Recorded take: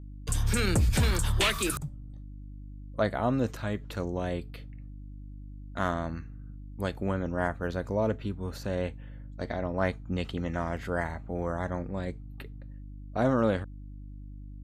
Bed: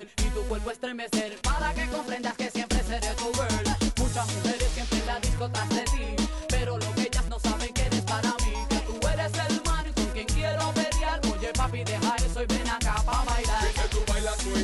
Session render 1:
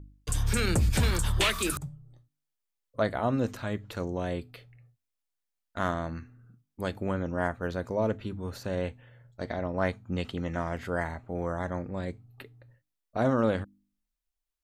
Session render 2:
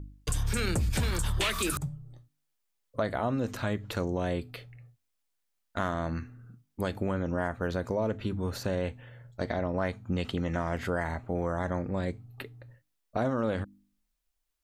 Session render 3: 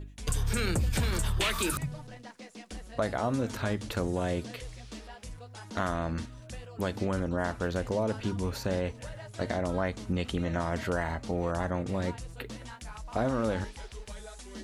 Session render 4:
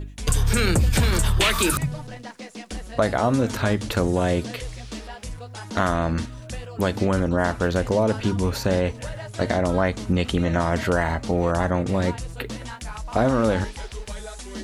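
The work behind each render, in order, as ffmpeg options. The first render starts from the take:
-af "bandreject=f=50:t=h:w=4,bandreject=f=100:t=h:w=4,bandreject=f=150:t=h:w=4,bandreject=f=200:t=h:w=4,bandreject=f=250:t=h:w=4,bandreject=f=300:t=h:w=4"
-filter_complex "[0:a]asplit=2[s0][s1];[s1]alimiter=limit=0.0668:level=0:latency=1:release=31,volume=0.841[s2];[s0][s2]amix=inputs=2:normalize=0,acompressor=threshold=0.0447:ratio=3"
-filter_complex "[1:a]volume=0.141[s0];[0:a][s0]amix=inputs=2:normalize=0"
-af "volume=2.82"

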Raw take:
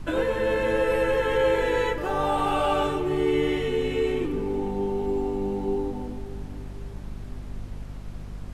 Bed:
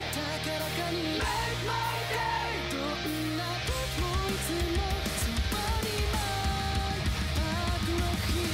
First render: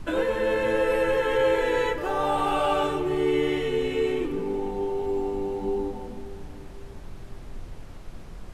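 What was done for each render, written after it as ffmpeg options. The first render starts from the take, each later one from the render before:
-af "bandreject=f=50:t=h:w=6,bandreject=f=100:t=h:w=6,bandreject=f=150:t=h:w=6,bandreject=f=200:t=h:w=6,bandreject=f=250:t=h:w=6,bandreject=f=300:t=h:w=6"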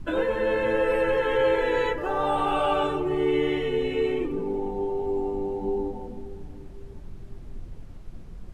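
-af "afftdn=nr=9:nf=-41"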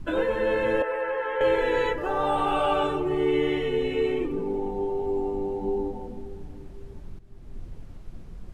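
-filter_complex "[0:a]asettb=1/sr,asplit=3[s0][s1][s2];[s0]atrim=end=0.824[s3];[s1]atrim=start=0.82:end=1.41,asetpts=PTS-STARTPTS,afade=t=in:d=0.004:c=qsin,afade=t=out:st=0.586:d=0.004:c=qsin,acrossover=split=510 2100:gain=0.0891 1 0.158[s4][s5][s6];[s4][s5][s6]amix=inputs=3:normalize=0[s7];[s2]atrim=start=1.406[s8];[s3][s7]acrossfade=d=0.004:c1=hsin:c2=qsin[s9];[s9][s8]acrossfade=d=0.004:c1=qsin:c2=hsin,asplit=2[s10][s11];[s10]atrim=end=7.19,asetpts=PTS-STARTPTS,afade=t=out:st=7.186:d=0.004:c=hsin:silence=0.188365[s12];[s11]atrim=start=7.19,asetpts=PTS-STARTPTS,afade=t=in:d=0.42:silence=0.188365[s13];[s12][s13]concat=n=2:v=0:a=1"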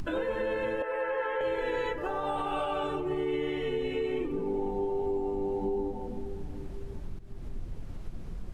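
-af "acompressor=mode=upward:threshold=0.0282:ratio=2.5,alimiter=limit=0.075:level=0:latency=1:release=353"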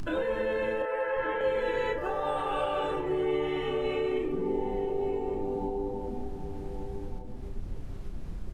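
-filter_complex "[0:a]asplit=2[s0][s1];[s1]adelay=32,volume=0.473[s2];[s0][s2]amix=inputs=2:normalize=0,asplit=2[s3][s4];[s4]adelay=1166,volume=0.398,highshelf=f=4000:g=-26.2[s5];[s3][s5]amix=inputs=2:normalize=0"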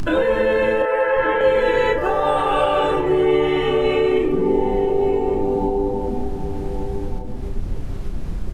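-af "volume=3.98"

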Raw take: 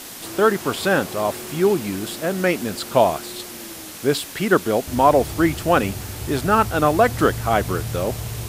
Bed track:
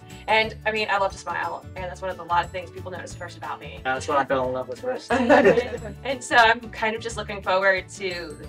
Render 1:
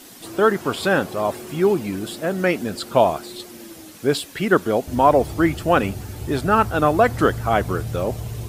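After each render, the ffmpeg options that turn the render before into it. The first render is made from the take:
-af "afftdn=nr=9:nf=-36"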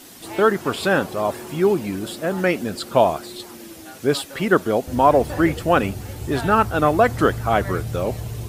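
-filter_complex "[1:a]volume=0.133[s0];[0:a][s0]amix=inputs=2:normalize=0"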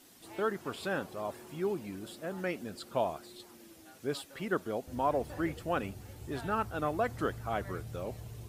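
-af "volume=0.168"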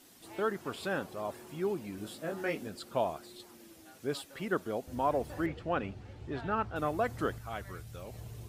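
-filter_complex "[0:a]asettb=1/sr,asplit=3[s0][s1][s2];[s0]atrim=end=1.964[s3];[s1]atrim=start=1.96:end=2.68,asetpts=PTS-STARTPTS,afade=t=in:d=0.004:c=qsin,afade=t=out:st=0.716:d=0.004:c=qsin,asplit=2[s4][s5];[s5]adelay=19,volume=0.708[s6];[s4][s6]amix=inputs=2:normalize=0,atrim=end_sample=31752[s7];[s2]atrim=start=2.676[s8];[s3][s7]acrossfade=d=0.004:c1=hsin:c2=qsin[s9];[s9][s8]acrossfade=d=0.004:c1=qsin:c2=hsin,asettb=1/sr,asplit=3[s10][s11][s12];[s10]atrim=end=5.464[s13];[s11]atrim=start=5.46:end=6.76,asetpts=PTS-STARTPTS,afade=t=in:d=0.004:c=qsin,afade=t=out:st=1.296:d=0.004:c=qsin,lowpass=3700[s14];[s12]atrim=start=6.756[s15];[s13][s14]acrossfade=d=0.004:c1=hsin:c2=qsin[s16];[s16][s15]acrossfade=d=0.004:c1=qsin:c2=hsin,asettb=1/sr,asplit=3[s17][s18][s19];[s17]atrim=end=7.384[s20];[s18]atrim=start=7.38:end=8.14,asetpts=PTS-STARTPTS,afade=t=in:d=0.004:c=qsin,afade=t=out:st=0.756:d=0.004:c=qsin,equalizer=f=380:w=0.32:g=-8.5[s21];[s19]atrim=start=8.136[s22];[s20][s21]acrossfade=d=0.004:c1=hsin:c2=qsin[s23];[s23][s22]acrossfade=d=0.004:c1=qsin:c2=hsin"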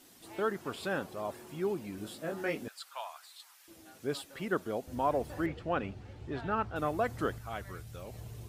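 -filter_complex "[0:a]asettb=1/sr,asplit=3[s0][s1][s2];[s0]atrim=end=2.684[s3];[s1]atrim=start=2.68:end=3.68,asetpts=PTS-STARTPTS,afade=t=in:d=0.004:c=qsin,afade=t=out:st=0.996:d=0.004:c=qsin,highpass=f=990:w=0.5412,highpass=f=990:w=1.3066[s4];[s2]atrim=start=3.676[s5];[s3][s4]acrossfade=d=0.004:c1=hsin:c2=qsin[s6];[s6][s5]acrossfade=d=0.004:c1=qsin:c2=hsin"

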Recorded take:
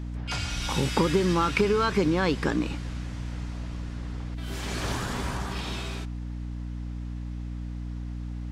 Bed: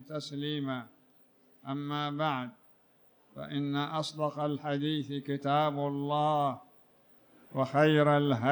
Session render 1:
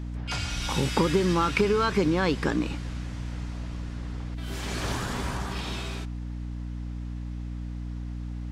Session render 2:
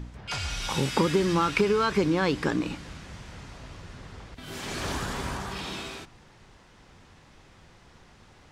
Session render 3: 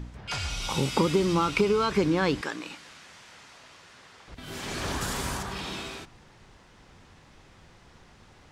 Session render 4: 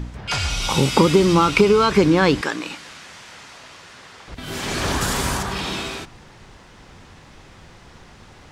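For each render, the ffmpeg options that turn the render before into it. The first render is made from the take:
-af anull
-af "bandreject=f=60:t=h:w=4,bandreject=f=120:t=h:w=4,bandreject=f=180:t=h:w=4,bandreject=f=240:t=h:w=4,bandreject=f=300:t=h:w=4"
-filter_complex "[0:a]asettb=1/sr,asplit=3[s0][s1][s2];[s0]atrim=end=0.484[s3];[s1]atrim=start=0.48:end=1.91,asetpts=PTS-STARTPTS,afade=t=in:d=0.004:c=qsin,afade=t=out:st=1.426:d=0.004:c=qsin,equalizer=f=1700:w=6:g=-12[s4];[s2]atrim=start=1.906[s5];[s3][s4]acrossfade=d=0.004:c1=hsin:c2=qsin[s6];[s6][s5]acrossfade=d=0.004:c1=qsin:c2=hsin,asettb=1/sr,asplit=3[s7][s8][s9];[s7]atrim=end=2.414[s10];[s8]atrim=start=2.41:end=4.28,asetpts=PTS-STARTPTS,afade=t=in:d=0.004:c=qsin,afade=t=out:st=1.866:d=0.004:c=qsin,highpass=f=1100:p=1[s11];[s9]atrim=start=4.276[s12];[s10][s11]acrossfade=d=0.004:c1=hsin:c2=qsin[s13];[s13][s12]acrossfade=d=0.004:c1=qsin:c2=hsin,asettb=1/sr,asplit=3[s14][s15][s16];[s14]atrim=end=5.014[s17];[s15]atrim=start=5.01:end=5.43,asetpts=PTS-STARTPTS,afade=t=in:d=0.004:c=qsin,afade=t=out:st=0.416:d=0.004:c=qsin,highshelf=f=5800:g=12[s18];[s16]atrim=start=5.426[s19];[s17][s18]acrossfade=d=0.004:c1=hsin:c2=qsin[s20];[s20][s19]acrossfade=d=0.004:c1=qsin:c2=hsin"
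-af "volume=2.82"

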